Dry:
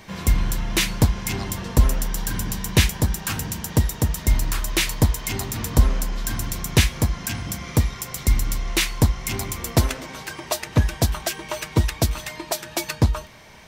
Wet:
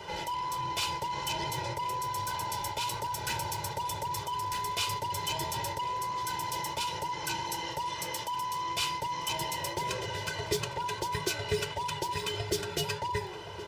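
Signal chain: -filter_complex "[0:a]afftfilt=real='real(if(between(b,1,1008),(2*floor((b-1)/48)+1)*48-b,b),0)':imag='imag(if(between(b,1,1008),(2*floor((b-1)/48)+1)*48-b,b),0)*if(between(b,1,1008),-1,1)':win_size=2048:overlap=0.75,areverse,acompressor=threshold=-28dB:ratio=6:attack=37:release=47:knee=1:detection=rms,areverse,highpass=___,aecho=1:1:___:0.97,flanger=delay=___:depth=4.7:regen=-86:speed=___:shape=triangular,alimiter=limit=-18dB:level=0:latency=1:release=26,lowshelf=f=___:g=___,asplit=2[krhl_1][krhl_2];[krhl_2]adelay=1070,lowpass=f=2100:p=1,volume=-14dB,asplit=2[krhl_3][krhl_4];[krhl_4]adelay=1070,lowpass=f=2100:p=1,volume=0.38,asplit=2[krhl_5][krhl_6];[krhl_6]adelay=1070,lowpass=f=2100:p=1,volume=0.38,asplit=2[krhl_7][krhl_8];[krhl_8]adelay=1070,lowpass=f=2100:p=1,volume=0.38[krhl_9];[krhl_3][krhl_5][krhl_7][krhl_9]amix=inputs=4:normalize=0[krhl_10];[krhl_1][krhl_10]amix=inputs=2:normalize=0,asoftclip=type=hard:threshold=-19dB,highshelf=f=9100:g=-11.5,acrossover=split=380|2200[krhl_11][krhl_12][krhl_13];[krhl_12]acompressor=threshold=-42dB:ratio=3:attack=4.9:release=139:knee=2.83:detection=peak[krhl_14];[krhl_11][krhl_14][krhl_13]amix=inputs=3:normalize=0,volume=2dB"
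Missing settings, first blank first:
110, 2, 9.2, 1.6, 500, 8.5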